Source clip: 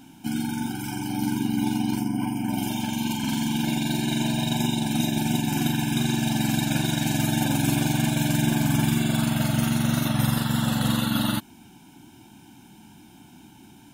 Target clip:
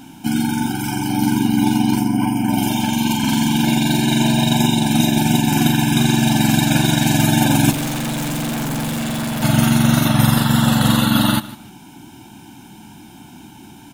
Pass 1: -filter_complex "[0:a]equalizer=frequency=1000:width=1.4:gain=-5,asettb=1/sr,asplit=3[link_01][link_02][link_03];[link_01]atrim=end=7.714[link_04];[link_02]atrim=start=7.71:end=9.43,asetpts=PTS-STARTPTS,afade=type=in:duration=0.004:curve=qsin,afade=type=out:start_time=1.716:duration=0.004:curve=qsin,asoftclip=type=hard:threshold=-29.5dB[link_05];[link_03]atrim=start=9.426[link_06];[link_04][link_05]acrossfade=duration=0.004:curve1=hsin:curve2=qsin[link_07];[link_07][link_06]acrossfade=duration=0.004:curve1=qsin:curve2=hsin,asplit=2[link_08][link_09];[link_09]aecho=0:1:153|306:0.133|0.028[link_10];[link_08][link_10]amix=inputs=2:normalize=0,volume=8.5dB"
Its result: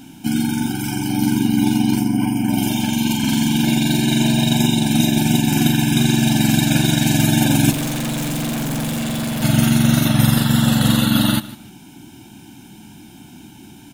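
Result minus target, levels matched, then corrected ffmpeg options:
1,000 Hz band −5.0 dB
-filter_complex "[0:a]equalizer=frequency=1000:width=1.4:gain=2,asettb=1/sr,asplit=3[link_01][link_02][link_03];[link_01]atrim=end=7.714[link_04];[link_02]atrim=start=7.71:end=9.43,asetpts=PTS-STARTPTS,afade=type=in:duration=0.004:curve=qsin,afade=type=out:start_time=1.716:duration=0.004:curve=qsin,asoftclip=type=hard:threshold=-29.5dB[link_05];[link_03]atrim=start=9.426[link_06];[link_04][link_05]acrossfade=duration=0.004:curve1=hsin:curve2=qsin[link_07];[link_07][link_06]acrossfade=duration=0.004:curve1=qsin:curve2=hsin,asplit=2[link_08][link_09];[link_09]aecho=0:1:153|306:0.133|0.028[link_10];[link_08][link_10]amix=inputs=2:normalize=0,volume=8.5dB"

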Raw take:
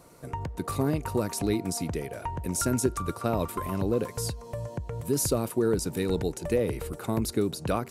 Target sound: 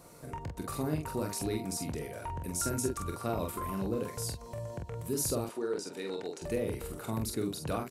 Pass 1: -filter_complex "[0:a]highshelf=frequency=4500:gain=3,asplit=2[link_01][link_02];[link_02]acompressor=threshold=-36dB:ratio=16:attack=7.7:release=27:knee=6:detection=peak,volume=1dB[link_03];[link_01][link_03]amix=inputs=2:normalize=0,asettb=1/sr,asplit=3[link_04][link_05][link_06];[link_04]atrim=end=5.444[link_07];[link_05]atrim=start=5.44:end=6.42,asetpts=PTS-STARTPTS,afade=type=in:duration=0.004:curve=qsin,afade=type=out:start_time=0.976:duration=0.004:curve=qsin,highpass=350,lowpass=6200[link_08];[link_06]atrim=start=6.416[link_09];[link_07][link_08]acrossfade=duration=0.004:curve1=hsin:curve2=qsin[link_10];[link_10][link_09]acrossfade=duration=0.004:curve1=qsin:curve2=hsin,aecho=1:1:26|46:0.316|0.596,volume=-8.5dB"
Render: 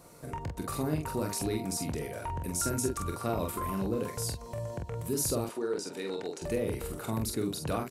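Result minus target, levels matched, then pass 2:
downward compressor: peak gain reduction −11 dB
-filter_complex "[0:a]highshelf=frequency=4500:gain=3,asplit=2[link_01][link_02];[link_02]acompressor=threshold=-47.5dB:ratio=16:attack=7.7:release=27:knee=6:detection=peak,volume=1dB[link_03];[link_01][link_03]amix=inputs=2:normalize=0,asettb=1/sr,asplit=3[link_04][link_05][link_06];[link_04]atrim=end=5.444[link_07];[link_05]atrim=start=5.44:end=6.42,asetpts=PTS-STARTPTS,afade=type=in:duration=0.004:curve=qsin,afade=type=out:start_time=0.976:duration=0.004:curve=qsin,highpass=350,lowpass=6200[link_08];[link_06]atrim=start=6.416[link_09];[link_07][link_08]acrossfade=duration=0.004:curve1=hsin:curve2=qsin[link_10];[link_10][link_09]acrossfade=duration=0.004:curve1=qsin:curve2=hsin,aecho=1:1:26|46:0.316|0.596,volume=-8.5dB"

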